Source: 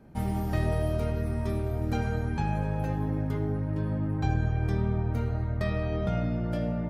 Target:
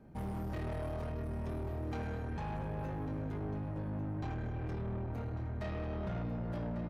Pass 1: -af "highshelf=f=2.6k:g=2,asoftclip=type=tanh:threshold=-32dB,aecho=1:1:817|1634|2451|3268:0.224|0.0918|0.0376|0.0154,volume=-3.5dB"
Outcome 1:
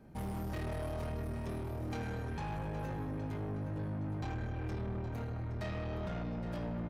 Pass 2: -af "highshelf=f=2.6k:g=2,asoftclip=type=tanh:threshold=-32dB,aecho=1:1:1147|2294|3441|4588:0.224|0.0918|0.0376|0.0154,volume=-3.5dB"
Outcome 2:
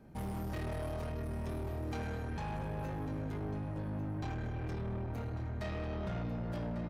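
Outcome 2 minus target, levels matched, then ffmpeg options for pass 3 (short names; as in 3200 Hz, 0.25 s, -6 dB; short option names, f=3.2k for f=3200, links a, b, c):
4000 Hz band +4.5 dB
-af "highshelf=f=2.6k:g=-6,asoftclip=type=tanh:threshold=-32dB,aecho=1:1:1147|2294|3441|4588:0.224|0.0918|0.0376|0.0154,volume=-3.5dB"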